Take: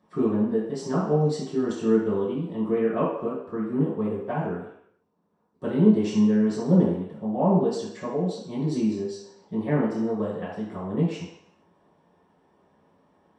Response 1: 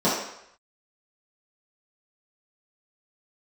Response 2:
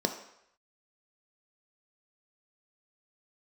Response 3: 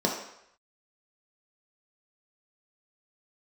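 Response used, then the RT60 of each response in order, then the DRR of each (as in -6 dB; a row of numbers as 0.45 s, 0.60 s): 1; 0.75 s, 0.75 s, 0.75 s; -11.0 dB, 5.0 dB, -1.5 dB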